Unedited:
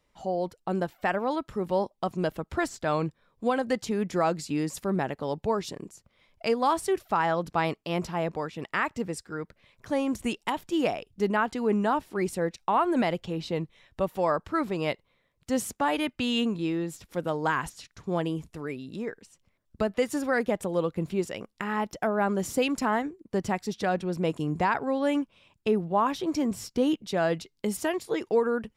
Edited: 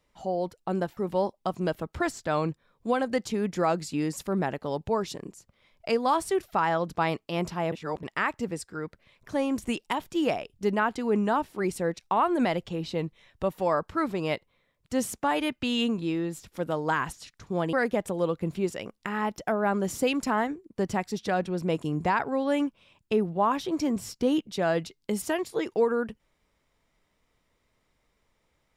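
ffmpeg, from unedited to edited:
-filter_complex "[0:a]asplit=5[a][b][c][d][e];[a]atrim=end=0.972[f];[b]atrim=start=1.538:end=8.292[g];[c]atrim=start=8.288:end=8.602,asetpts=PTS-STARTPTS,areverse[h];[d]atrim=start=8.598:end=18.302[i];[e]atrim=start=20.278[j];[f][g]acrossfade=d=0.004:c1=hsin:c2=hsin[k];[k][h]acrossfade=d=0.004:c1=hsin:c2=hsin[l];[l][i]acrossfade=d=0.004:c1=hsin:c2=hsin[m];[m][j]acrossfade=d=0.004:c1=hsin:c2=hsin"

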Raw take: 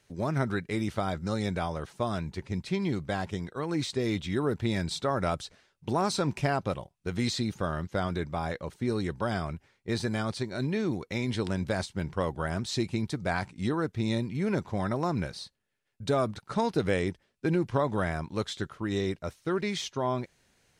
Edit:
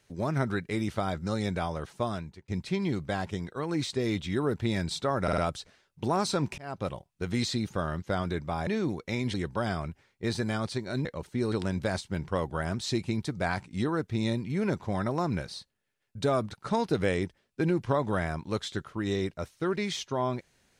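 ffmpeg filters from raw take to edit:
-filter_complex "[0:a]asplit=10[a][b][c][d][e][f][g][h][i][j];[a]atrim=end=2.48,asetpts=PTS-STARTPTS,afade=t=out:st=2.04:d=0.44[k];[b]atrim=start=2.48:end=5.282,asetpts=PTS-STARTPTS,afade=t=in:d=0.004:c=hsin[l];[c]atrim=start=5.228:end=5.282[m];[d]atrim=start=5.228:end=5.282[n];[e]atrim=start=5.228:end=6.43,asetpts=PTS-STARTPTS,afade=t=out:st=1.198:d=0.004:c=hsin[o];[f]atrim=start=6.43:end=8.522,asetpts=PTS-STARTPTS,afade=t=in:d=0.33[p];[g]atrim=start=10.698:end=11.372[q];[h]atrim=start=8.988:end=10.702[r];[i]atrim=start=8.518:end=8.992[s];[j]atrim=start=11.368[t];[k][l]concat=n=2:v=0:a=1[u];[u][m]acrossfade=d=0.004:c1=hsin:c2=hsin[v];[v][n]acrossfade=d=0.004:c1=hsin:c2=hsin[w];[o][p]concat=n=2:v=0:a=1[x];[w][x]acrossfade=d=0.004:c1=hsin:c2=hsin[y];[y][q]acrossfade=d=0.004:c1=hsin:c2=hsin[z];[z][r]acrossfade=d=0.004:c1=hsin:c2=hsin[aa];[aa][s]acrossfade=d=0.004:c1=hsin:c2=hsin[ab];[ab][t]acrossfade=d=0.004:c1=hsin:c2=hsin"

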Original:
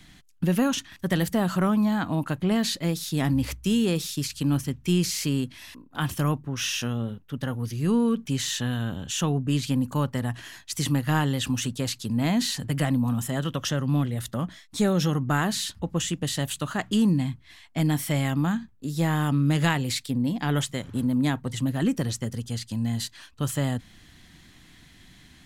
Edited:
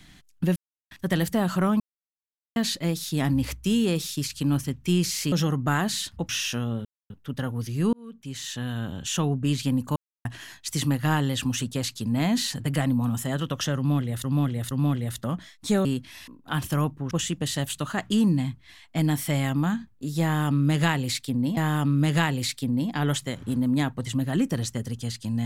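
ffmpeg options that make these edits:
-filter_complex "[0:a]asplit=16[a][b][c][d][e][f][g][h][i][j][k][l][m][n][o][p];[a]atrim=end=0.56,asetpts=PTS-STARTPTS,afade=t=out:st=0.556:d=0.004:c=hsin[q];[b]atrim=start=0.56:end=0.91,asetpts=PTS-STARTPTS,volume=0[r];[c]atrim=start=0.91:end=1.8,asetpts=PTS-STARTPTS,afade=t=in:d=0.004:c=hsin,afade=t=out:st=0.886:d=0.004:c=hsin[s];[d]atrim=start=1.8:end=2.56,asetpts=PTS-STARTPTS,volume=0[t];[e]atrim=start=2.56:end=5.322,asetpts=PTS-STARTPTS,afade=t=in:d=0.004:c=hsin[u];[f]atrim=start=14.948:end=15.922[v];[g]atrim=start=6.578:end=7.14,asetpts=PTS-STARTPTS,afade=t=out:st=0.558:d=0.004:c=hsin,apad=pad_dur=0.25[w];[h]atrim=start=7.14:end=7.97,asetpts=PTS-STARTPTS,afade=t=in:d=0.004:c=hsin,afade=t=out:st=0.826:d=0.004:c=hsin[x];[i]atrim=start=7.97:end=10,asetpts=PTS-STARTPTS,afade=t=in:d=1.07,afade=t=out:st=2.026:d=0.004:c=hsin[y];[j]atrim=start=10:end=10.29,asetpts=PTS-STARTPTS,volume=0[z];[k]atrim=start=10.29:end=14.282,asetpts=PTS-STARTPTS,afade=t=in:d=0.004:c=hsin[aa];[l]atrim=start=13.808:end=14.282[ab];[m]atrim=start=13.808:end=14.952[ac];[n]atrim=start=5.318:end=6.582[ad];[o]atrim=start=15.918:end=20.382[ae];[p]atrim=start=19.038[af];[q][r][s][t][u]concat=n=5:v=0:a=1[ag];[ag][v]acrossfade=d=0.004:c1=hsin:c2=hsin[ah];[w][x][y][z][aa]concat=n=5:v=0:a=1[ai];[ah][ai]acrossfade=d=0.004:c1=hsin:c2=hsin[aj];[aj][ab]acrossfade=d=0.004:c1=hsin:c2=hsin[ak];[ak][ac]acrossfade=d=0.004:c1=hsin:c2=hsin[al];[al][ad]acrossfade=d=0.004:c1=hsin:c2=hsin[am];[am][ae]acrossfade=d=0.004:c1=hsin:c2=hsin[an];[an][af]acrossfade=d=0.004:c1=hsin:c2=hsin"

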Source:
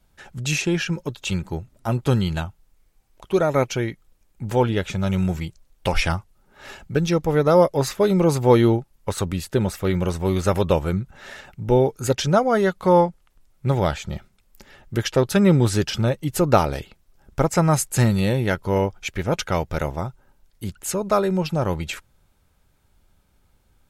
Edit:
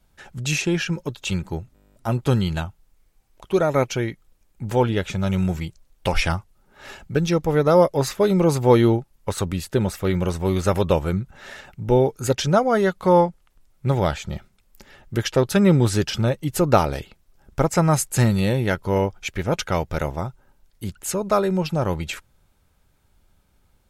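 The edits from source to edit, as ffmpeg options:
-filter_complex "[0:a]asplit=11[a][b][c][d][e][f][g][h][i][j][k];[a]atrim=end=1.762[l];[b]atrim=start=1.738:end=1.762[m];[c]atrim=start=1.738:end=1.762[n];[d]atrim=start=1.738:end=1.762[o];[e]atrim=start=1.738:end=1.762[p];[f]atrim=start=1.738:end=1.762[q];[g]atrim=start=1.738:end=1.762[r];[h]atrim=start=1.738:end=1.762[s];[i]atrim=start=1.738:end=1.762[t];[j]atrim=start=1.738:end=1.762[u];[k]atrim=start=1.738[v];[l][m]acrossfade=d=0.004:c1=hsin:c2=hsin[w];[w][n]acrossfade=d=0.004:c1=hsin:c2=hsin[x];[x][o]acrossfade=d=0.004:c1=hsin:c2=hsin[y];[y][p]acrossfade=d=0.004:c1=hsin:c2=hsin[z];[z][q]acrossfade=d=0.004:c1=hsin:c2=hsin[aa];[aa][r]acrossfade=d=0.004:c1=hsin:c2=hsin[ab];[ab][s]acrossfade=d=0.004:c1=hsin:c2=hsin[ac];[ac][t]acrossfade=d=0.004:c1=hsin:c2=hsin[ad];[ad][u]acrossfade=d=0.004:c1=hsin:c2=hsin[ae];[ae][v]acrossfade=d=0.004:c1=hsin:c2=hsin"

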